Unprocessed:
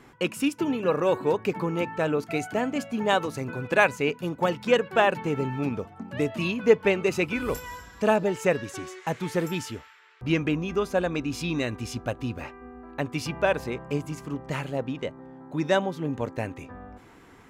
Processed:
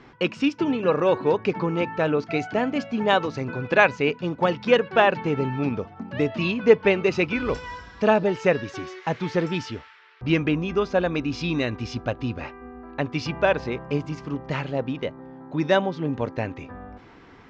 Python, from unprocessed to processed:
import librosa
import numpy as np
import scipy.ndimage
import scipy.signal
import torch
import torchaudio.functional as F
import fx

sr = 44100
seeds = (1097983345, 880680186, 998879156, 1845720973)

y = scipy.signal.sosfilt(scipy.signal.butter(6, 5600.0, 'lowpass', fs=sr, output='sos'), x)
y = F.gain(torch.from_numpy(y), 3.0).numpy()